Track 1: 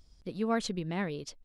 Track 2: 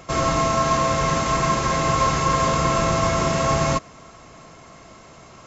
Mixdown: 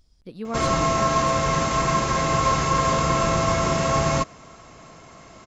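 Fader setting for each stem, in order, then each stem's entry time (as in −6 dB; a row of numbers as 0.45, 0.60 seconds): −1.0, −1.0 decibels; 0.00, 0.45 seconds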